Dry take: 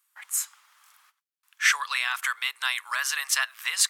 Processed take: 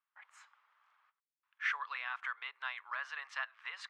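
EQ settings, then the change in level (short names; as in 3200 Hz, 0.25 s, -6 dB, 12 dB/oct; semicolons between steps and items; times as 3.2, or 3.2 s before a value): tone controls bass -7 dB, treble -6 dB; tape spacing loss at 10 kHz 38 dB; -5.0 dB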